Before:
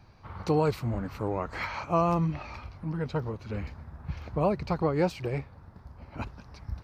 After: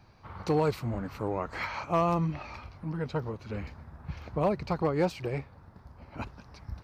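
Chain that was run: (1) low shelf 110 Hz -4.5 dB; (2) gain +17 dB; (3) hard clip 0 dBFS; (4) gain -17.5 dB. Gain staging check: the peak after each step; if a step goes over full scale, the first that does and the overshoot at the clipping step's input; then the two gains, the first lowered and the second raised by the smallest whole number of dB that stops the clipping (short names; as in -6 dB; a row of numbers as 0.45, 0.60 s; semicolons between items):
-13.5, +3.5, 0.0, -17.5 dBFS; step 2, 3.5 dB; step 2 +13 dB, step 4 -13.5 dB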